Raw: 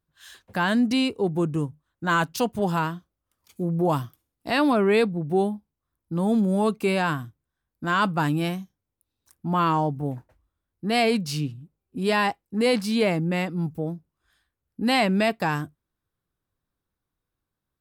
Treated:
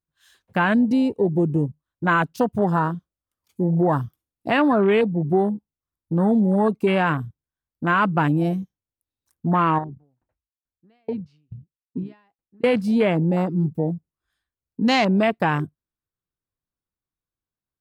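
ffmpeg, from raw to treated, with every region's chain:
ffmpeg -i in.wav -filter_complex "[0:a]asettb=1/sr,asplit=3[link_01][link_02][link_03];[link_01]atrim=end=9.784[link_04];[link_02]atrim=start=9.78:end=12.64,asetpts=PTS-STARTPTS,afade=type=in:duration=0.004:curve=qsin,afade=type=out:start_time=2.856:duration=0.004:curve=qsin,lowpass=3000,acompressor=threshold=-25dB:ratio=10:attack=3.2:release=140:knee=1:detection=peak,aeval=exprs='val(0)*pow(10,-32*if(lt(mod(2.3*n/s,1),2*abs(2.3)/1000),1-mod(2.3*n/s,1)/(2*abs(2.3)/1000),(mod(2.3*n/s,1)-2*abs(2.3)/1000)/(1-2*abs(2.3)/1000))/20)':channel_layout=same[link_05];[link_03]atrim=start=12.636[link_06];[link_04][link_05]acrossfade=duration=0.004:curve1=hsin:curve2=qsin[link_07];[link_07][link_06]acrossfade=duration=0.004:curve1=qsin:curve2=hsin,afwtdn=0.0398,acompressor=threshold=-23dB:ratio=2.5,volume=6.5dB" out.wav

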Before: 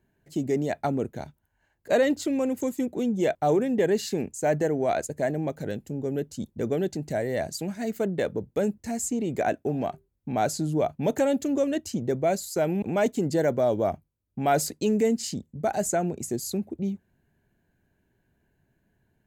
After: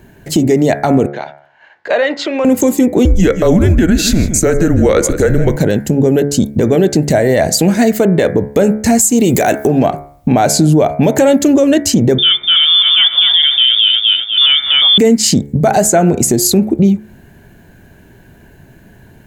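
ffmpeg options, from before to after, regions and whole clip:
ffmpeg -i in.wav -filter_complex "[0:a]asettb=1/sr,asplit=3[link_01][link_02][link_03];[link_01]atrim=end=1.064[link_04];[link_02]atrim=start=1.06:end=2.45,asetpts=PTS-STARTPTS,afade=type=in:duration=0.004:curve=qsin,afade=type=out:start_time=1.386:duration=0.004:curve=qsin,acrossover=split=560 4400:gain=0.141 1 0.0891[link_05][link_06][link_07];[link_05][link_06][link_07]amix=inputs=3:normalize=0,acompressor=threshold=-48dB:ratio=2:attack=3.2:release=140:knee=1:detection=peak,highpass=170,lowpass=5600[link_08];[link_03]atrim=start=2.446[link_09];[link_04][link_08]acrossfade=duration=0.004:curve1=hsin:curve2=qsin[link_10];[link_10][link_09]acrossfade=duration=0.004:curve1=qsin:curve2=hsin,asettb=1/sr,asplit=3[link_11][link_12][link_13];[link_11]atrim=end=3.054[link_14];[link_12]atrim=start=3.05:end=5.56,asetpts=PTS-STARTPTS,afade=type=in:duration=0.004:curve=qsin,afade=type=out:start_time=2.506:duration=0.004:curve=qsin,afreqshift=-170,aecho=1:1:158:0.168,atrim=end_sample=110691[link_15];[link_13]atrim=start=5.556[link_16];[link_14][link_15]acrossfade=duration=0.004:curve1=hsin:curve2=qsin[link_17];[link_17][link_16]acrossfade=duration=0.004:curve1=qsin:curve2=hsin,asettb=1/sr,asplit=3[link_18][link_19][link_20];[link_18]atrim=end=9.014[link_21];[link_19]atrim=start=9.01:end=9.67,asetpts=PTS-STARTPTS,afade=type=in:duration=0.004:curve=qsin,afade=type=out:start_time=0.656:duration=0.004:curve=qsin,aemphasis=mode=production:type=75kf,acompressor=mode=upward:threshold=-25dB:ratio=2.5:attack=3.2:release=140:knee=2.83:detection=peak[link_22];[link_20]atrim=start=9.666[link_23];[link_21][link_22]acrossfade=duration=0.004:curve1=hsin:curve2=qsin[link_24];[link_24][link_23]acrossfade=duration=0.004:curve1=qsin:curve2=hsin,asettb=1/sr,asplit=3[link_25][link_26][link_27];[link_25]atrim=end=12.184[link_28];[link_26]atrim=start=12.18:end=14.98,asetpts=PTS-STARTPTS,afade=type=in:duration=0.004:curve=qsin,afade=type=out:start_time=2.796:duration=0.004:curve=qsin,lowpass=frequency=3100:width_type=q:width=0.5098,lowpass=frequency=3100:width_type=q:width=0.6013,lowpass=frequency=3100:width_type=q:width=0.9,lowpass=frequency=3100:width_type=q:width=2.563,afreqshift=-3700,equalizer=frequency=440:width_type=o:width=0.42:gain=-7,asplit=2[link_29][link_30];[link_30]adelay=248,lowpass=frequency=2200:poles=1,volume=-4dB,asplit=2[link_31][link_32];[link_32]adelay=248,lowpass=frequency=2200:poles=1,volume=0.41,asplit=2[link_33][link_34];[link_34]adelay=248,lowpass=frequency=2200:poles=1,volume=0.41,asplit=2[link_35][link_36];[link_36]adelay=248,lowpass=frequency=2200:poles=1,volume=0.41,asplit=2[link_37][link_38];[link_38]adelay=248,lowpass=frequency=2200:poles=1,volume=0.41[link_39];[link_29][link_31][link_33][link_35][link_37][link_39]amix=inputs=6:normalize=0,atrim=end_sample=123480[link_40];[link_27]atrim=start=14.976[link_41];[link_28][link_40]acrossfade=duration=0.004:curve1=hsin:curve2=qsin[link_42];[link_42][link_41]acrossfade=duration=0.004:curve1=qsin:curve2=hsin,acompressor=threshold=-36dB:ratio=3,bandreject=frequency=71.39:width_type=h:width=4,bandreject=frequency=142.78:width_type=h:width=4,bandreject=frequency=214.17:width_type=h:width=4,bandreject=frequency=285.56:width_type=h:width=4,bandreject=frequency=356.95:width_type=h:width=4,bandreject=frequency=428.34:width_type=h:width=4,bandreject=frequency=499.73:width_type=h:width=4,bandreject=frequency=571.12:width_type=h:width=4,bandreject=frequency=642.51:width_type=h:width=4,bandreject=frequency=713.9:width_type=h:width=4,bandreject=frequency=785.29:width_type=h:width=4,bandreject=frequency=856.68:width_type=h:width=4,bandreject=frequency=928.07:width_type=h:width=4,bandreject=frequency=999.46:width_type=h:width=4,bandreject=frequency=1070.85:width_type=h:width=4,bandreject=frequency=1142.24:width_type=h:width=4,bandreject=frequency=1213.63:width_type=h:width=4,bandreject=frequency=1285.02:width_type=h:width=4,bandreject=frequency=1356.41:width_type=h:width=4,bandreject=frequency=1427.8:width_type=h:width=4,bandreject=frequency=1499.19:width_type=h:width=4,bandreject=frequency=1570.58:width_type=h:width=4,bandreject=frequency=1641.97:width_type=h:width=4,bandreject=frequency=1713.36:width_type=h:width=4,bandreject=frequency=1784.75:width_type=h:width=4,bandreject=frequency=1856.14:width_type=h:width=4,bandreject=frequency=1927.53:width_type=h:width=4,bandreject=frequency=1998.92:width_type=h:width=4,bandreject=frequency=2070.31:width_type=h:width=4,bandreject=frequency=2141.7:width_type=h:width=4,bandreject=frequency=2213.09:width_type=h:width=4,bandreject=frequency=2284.48:width_type=h:width=4,bandreject=frequency=2355.87:width_type=h:width=4,alimiter=level_in=29.5dB:limit=-1dB:release=50:level=0:latency=1,volume=-1dB" out.wav

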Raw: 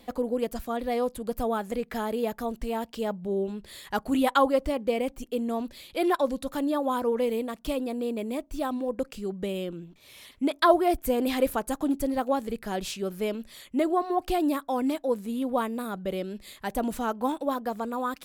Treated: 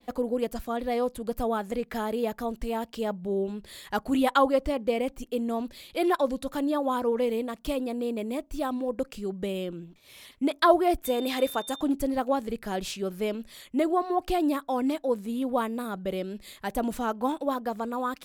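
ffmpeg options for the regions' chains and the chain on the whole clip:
ffmpeg -i in.wav -filter_complex "[0:a]asettb=1/sr,asplit=3[link_01][link_02][link_03];[link_01]atrim=end=11.054[link_04];[link_02]atrim=start=11.05:end=11.81,asetpts=PTS-STARTPTS,afade=type=in:duration=0.004:curve=qsin,afade=type=out:start_time=0.756:duration=0.004:curve=qsin,highpass=frequency=190:poles=1,bass=frequency=250:gain=-4,treble=frequency=4000:gain=2,aeval=exprs='val(0)+0.00891*sin(2*PI*3600*n/s)':channel_layout=same[link_05];[link_03]atrim=start=11.806[link_06];[link_04][link_05]acrossfade=duration=0.004:curve1=hsin:curve2=qsin[link_07];[link_07][link_06]acrossfade=duration=0.004:curve1=qsin:curve2=hsin,agate=range=-33dB:threshold=-51dB:ratio=3:detection=peak,adynamicequalizer=threshold=0.00282:dfrequency=7800:dqfactor=0.7:tfrequency=7800:tqfactor=0.7:attack=5:release=100:ratio=0.375:range=2:mode=cutabove:tftype=highshelf" out.wav

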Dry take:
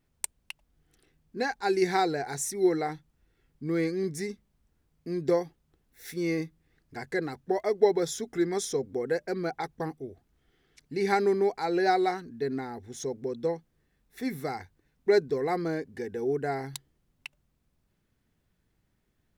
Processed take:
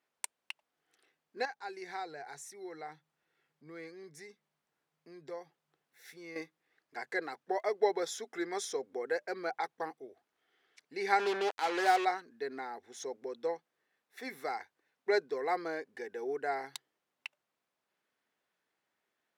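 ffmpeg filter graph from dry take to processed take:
ffmpeg -i in.wav -filter_complex "[0:a]asettb=1/sr,asplit=3[link_01][link_02][link_03];[link_01]atrim=end=1.454[link_04];[link_02]atrim=start=1.45:end=6.36,asetpts=PTS-STARTPTS,afade=type=in:duration=0.004:curve=qsin,afade=type=out:start_time=4.906:duration=0.004:curve=qsin,acompressor=threshold=-56dB:ratio=1.5:attack=3.2:release=140:knee=1:detection=peak,equalizer=frequency=150:width_type=o:width=0.35:gain=13[link_05];[link_03]atrim=start=6.356[link_06];[link_04][link_05]acrossfade=duration=0.004:curve1=hsin:curve2=qsin[link_07];[link_07][link_06]acrossfade=duration=0.004:curve1=qsin:curve2=hsin,asettb=1/sr,asplit=3[link_08][link_09][link_10];[link_08]atrim=end=11.194[link_11];[link_09]atrim=start=11.19:end=12.05,asetpts=PTS-STARTPTS,afade=type=in:duration=0.004:curve=qsin,afade=type=out:start_time=0.856:duration=0.004:curve=qsin,highshelf=frequency=6100:gain=-5.5,acrusher=bits=4:mix=0:aa=0.5[link_12];[link_10]atrim=start=12.046[link_13];[link_11][link_12]acrossfade=duration=0.004:curve1=hsin:curve2=qsin[link_14];[link_14][link_13]acrossfade=duration=0.004:curve1=qsin:curve2=hsin,highpass=630,aemphasis=mode=reproduction:type=cd" out.wav

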